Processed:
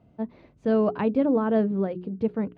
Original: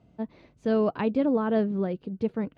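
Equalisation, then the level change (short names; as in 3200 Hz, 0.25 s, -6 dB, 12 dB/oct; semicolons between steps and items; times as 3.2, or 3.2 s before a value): high shelf 3100 Hz -10.5 dB; notches 60/120/180/240/300/360/420 Hz; +2.5 dB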